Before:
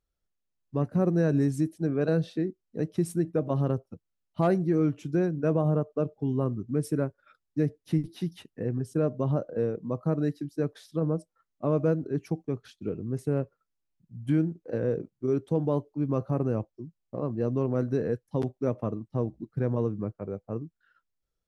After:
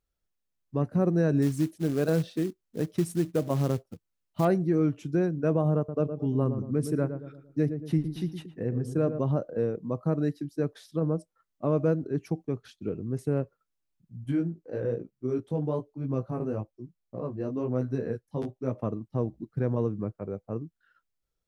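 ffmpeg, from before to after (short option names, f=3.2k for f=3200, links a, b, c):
-filter_complex "[0:a]asettb=1/sr,asplit=3[a][b][c];[a]atrim=end=1.424[d];[b]atrim=start=1.42:end=4.45,asetpts=PTS-STARTPTS,afade=t=in:d=0.004:c=qsin,afade=t=out:st=3.026:d=0.004:c=qsin,acrusher=bits=5:mode=log:mix=0:aa=0.000001[e];[c]atrim=start=4.446[f];[d][e]acrossfade=d=0.004:c1=hsin:c2=qsin[g];[g][f]acrossfade=d=0.004:c1=qsin:c2=hsin,asettb=1/sr,asplit=3[h][i][j];[h]atrim=end=5.774[k];[i]atrim=start=5.77:end=9.19,asetpts=PTS-STARTPTS,afade=t=in:d=0.004:c=qsin,afade=t=out:st=3.416:d=0.004:c=qsin,asplit=2[l][m];[m]adelay=114,lowpass=f=960:p=1,volume=-8dB,asplit=2[n][o];[o]adelay=114,lowpass=f=960:p=1,volume=0.47,asplit=2[p][q];[q]adelay=114,lowpass=f=960:p=1,volume=0.47,asplit=2[r][s];[s]adelay=114,lowpass=f=960:p=1,volume=0.47,asplit=2[t][u];[u]adelay=114,lowpass=f=960:p=1,volume=0.47[v];[l][n][p][r][t][v]amix=inputs=6:normalize=0,atrim=end_sample=150822[w];[j]atrim=start=9.186[x];[k][w]acrossfade=d=0.004:c1=hsin:c2=qsin[y];[y][x]acrossfade=d=0.004:c1=qsin:c2=hsin,asettb=1/sr,asplit=3[z][aa][ab];[z]atrim=end=14.244[ac];[aa]atrim=start=14.24:end=18.72,asetpts=PTS-STARTPTS,afade=t=in:d=0.004:c=qsin,afade=t=out:st=4.476:d=0.004:c=qsin,flanger=delay=15:depth=5.1:speed=1.1[ad];[ab]atrim=start=18.716[ae];[ac][ad]acrossfade=d=0.004:c1=hsin:c2=qsin[af];[af][ae]acrossfade=d=0.004:c1=qsin:c2=hsin"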